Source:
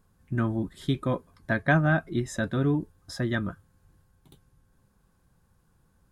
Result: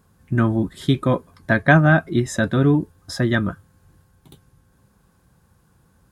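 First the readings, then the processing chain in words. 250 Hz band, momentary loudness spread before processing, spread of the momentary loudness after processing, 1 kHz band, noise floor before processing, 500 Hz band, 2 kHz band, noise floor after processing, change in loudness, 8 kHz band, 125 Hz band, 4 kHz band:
+8.5 dB, 11 LU, 11 LU, +8.5 dB, -67 dBFS, +8.5 dB, +8.5 dB, -60 dBFS, +8.5 dB, +8.5 dB, +8.5 dB, +8.5 dB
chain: HPF 53 Hz; gain +8.5 dB

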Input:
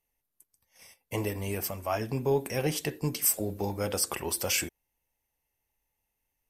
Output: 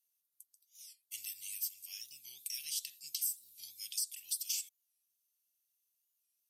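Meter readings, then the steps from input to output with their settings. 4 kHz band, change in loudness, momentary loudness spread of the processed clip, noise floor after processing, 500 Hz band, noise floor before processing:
-5.0 dB, -9.0 dB, 14 LU, -83 dBFS, under -40 dB, -83 dBFS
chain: inverse Chebyshev high-pass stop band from 1400 Hz, stop band 50 dB; compressor 6:1, threshold -36 dBFS, peak gain reduction 14.5 dB; record warp 45 rpm, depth 160 cents; gain +2 dB

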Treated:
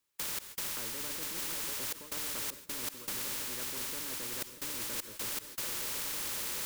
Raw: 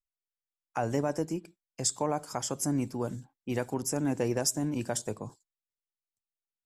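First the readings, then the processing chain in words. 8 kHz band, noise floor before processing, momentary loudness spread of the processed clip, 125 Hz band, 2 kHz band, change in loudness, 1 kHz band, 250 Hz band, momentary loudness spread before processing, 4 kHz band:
-1.5 dB, under -85 dBFS, 3 LU, -18.0 dB, +2.5 dB, -3.0 dB, -9.0 dB, -17.0 dB, 11 LU, +3.5 dB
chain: LPF 1200 Hz 12 dB/oct; fixed phaser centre 340 Hz, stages 4; split-band echo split 410 Hz, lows 0.159 s, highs 0.737 s, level -11 dB; in parallel at -5 dB: requantised 6-bit, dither triangular; on the sum: step gate ".x.xxxxxxx.xx" 78 bpm -24 dB; reverse; compressor 6:1, threshold -33 dBFS, peak gain reduction 10.5 dB; reverse; Butterworth band-stop 710 Hz, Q 3.3; gate -58 dBFS, range -34 dB; spectral compressor 4:1

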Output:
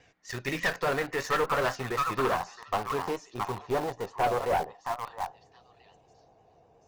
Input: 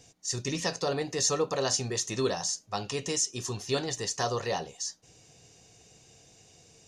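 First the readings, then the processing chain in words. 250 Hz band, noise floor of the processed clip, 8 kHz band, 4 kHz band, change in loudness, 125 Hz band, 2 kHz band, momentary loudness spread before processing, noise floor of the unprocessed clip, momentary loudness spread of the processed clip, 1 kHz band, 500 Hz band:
-1.5 dB, -62 dBFS, -16.0 dB, -7.5 dB, 0.0 dB, -3.0 dB, +7.0 dB, 7 LU, -58 dBFS, 8 LU, +7.5 dB, +1.0 dB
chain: high shelf 3100 Hz +8 dB; on a send: delay with a stepping band-pass 0.67 s, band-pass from 1300 Hz, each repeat 1.4 oct, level -1 dB; on the sum: low-pass sweep 1800 Hz -> 810 Hz, 0.59–4.28; bell 150 Hz -6 dB 2.6 oct; tube stage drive 26 dB, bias 0.55; vibrato 8.3 Hz 59 cents; in parallel at -8 dB: requantised 6-bit, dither none; on the sum: gain +2.5 dB

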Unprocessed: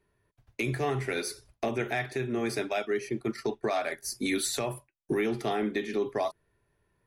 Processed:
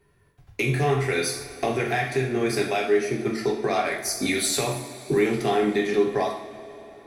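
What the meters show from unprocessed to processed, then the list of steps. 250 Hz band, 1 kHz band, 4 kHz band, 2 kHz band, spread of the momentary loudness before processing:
+5.5 dB, +7.0 dB, +7.0 dB, +6.5 dB, 5 LU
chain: in parallel at +2 dB: compressor, threshold -36 dBFS, peak gain reduction 11 dB; on the sum: two-slope reverb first 0.58 s, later 4.2 s, from -18 dB, DRR -0.5 dB

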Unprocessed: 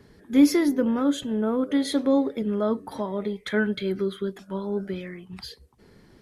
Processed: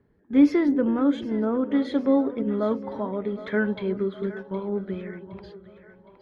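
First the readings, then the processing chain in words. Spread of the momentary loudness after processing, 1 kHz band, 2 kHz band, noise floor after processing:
14 LU, 0.0 dB, -1.0 dB, -57 dBFS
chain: gate -40 dBFS, range -11 dB; LPF 2400 Hz 12 dB/oct; on a send: split-band echo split 480 Hz, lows 0.329 s, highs 0.765 s, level -13 dB; on the sum: mismatched tape noise reduction decoder only

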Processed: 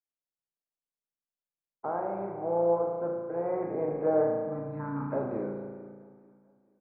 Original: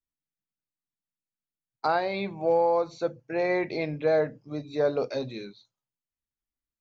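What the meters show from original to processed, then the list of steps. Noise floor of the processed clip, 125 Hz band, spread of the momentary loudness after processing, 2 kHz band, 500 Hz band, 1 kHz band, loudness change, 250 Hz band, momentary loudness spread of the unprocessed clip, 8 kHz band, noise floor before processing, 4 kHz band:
under -85 dBFS, -0.5 dB, 13 LU, -14.5 dB, -2.5 dB, -4.5 dB, -3.5 dB, -1.0 dB, 11 LU, n/a, under -85 dBFS, under -40 dB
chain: per-bin compression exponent 0.6; gate -58 dBFS, range -33 dB; spectral gain 4.23–5.13, 320–860 Hz -28 dB; LPF 1200 Hz 24 dB/oct; vocal rider 2 s; wow and flutter 27 cents; on a send: feedback echo 0.44 s, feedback 36%, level -20 dB; on the sum: spring tank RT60 1.6 s, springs 35 ms, chirp 70 ms, DRR 0.5 dB; gain -8.5 dB

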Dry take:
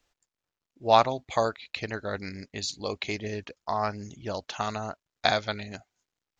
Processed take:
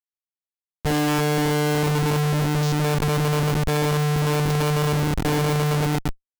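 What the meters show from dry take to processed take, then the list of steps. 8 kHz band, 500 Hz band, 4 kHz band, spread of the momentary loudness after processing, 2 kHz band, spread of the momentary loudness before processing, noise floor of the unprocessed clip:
n/a, +5.5 dB, +4.5 dB, 2 LU, +6.5 dB, 15 LU, under -85 dBFS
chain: painted sound rise, 0.97–1.2, 450–1900 Hz -20 dBFS; vocoder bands 4, saw 149 Hz; dark delay 0.114 s, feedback 76%, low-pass 1500 Hz, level -11 dB; Schmitt trigger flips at -34 dBFS; gain +6.5 dB

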